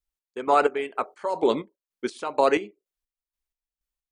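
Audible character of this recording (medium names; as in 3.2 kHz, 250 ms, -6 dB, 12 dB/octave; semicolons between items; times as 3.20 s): chopped level 2.1 Hz, depth 65%, duty 40%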